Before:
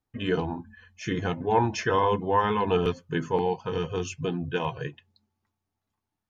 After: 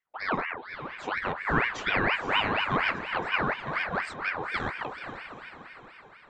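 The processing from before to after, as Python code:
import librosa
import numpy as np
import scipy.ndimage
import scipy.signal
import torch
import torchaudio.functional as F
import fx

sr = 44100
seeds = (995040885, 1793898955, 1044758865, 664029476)

y = fx.high_shelf(x, sr, hz=3100.0, db=-9.5)
y = fx.echo_diffused(y, sr, ms=502, feedback_pct=50, wet_db=-8.5)
y = fx.ring_lfo(y, sr, carrier_hz=1300.0, swing_pct=55, hz=4.2)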